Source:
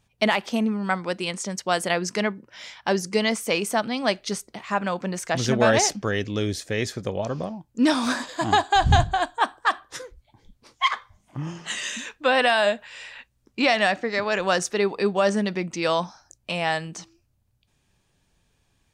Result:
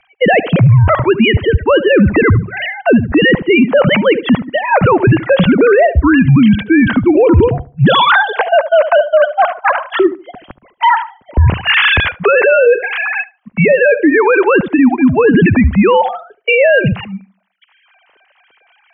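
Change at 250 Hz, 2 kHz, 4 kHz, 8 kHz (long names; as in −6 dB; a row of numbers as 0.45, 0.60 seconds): +16.0 dB, +13.0 dB, +8.0 dB, below −40 dB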